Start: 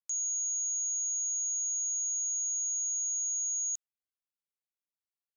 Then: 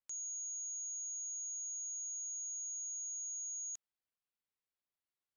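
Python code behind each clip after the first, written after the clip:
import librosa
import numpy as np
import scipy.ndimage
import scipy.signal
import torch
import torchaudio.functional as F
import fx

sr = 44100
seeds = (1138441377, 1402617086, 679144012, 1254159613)

y = fx.high_shelf(x, sr, hz=6300.0, db=-12.0)
y = fx.notch(y, sr, hz=6400.0, q=7.3)
y = y * librosa.db_to_amplitude(1.0)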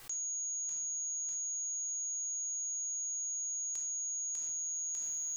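y = fx.echo_feedback(x, sr, ms=598, feedback_pct=34, wet_db=-3)
y = fx.room_shoebox(y, sr, seeds[0], volume_m3=1000.0, walls='furnished', distance_m=3.7)
y = fx.env_flatten(y, sr, amount_pct=100)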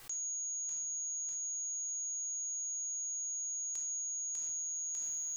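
y = fx.echo_feedback(x, sr, ms=131, feedback_pct=35, wet_db=-23.0)
y = y * librosa.db_to_amplitude(-1.0)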